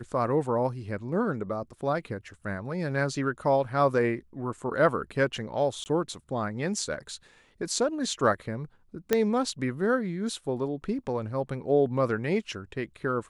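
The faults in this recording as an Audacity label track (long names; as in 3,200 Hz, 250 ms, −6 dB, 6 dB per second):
5.840000	5.860000	drop-out 19 ms
9.130000	9.130000	click −9 dBFS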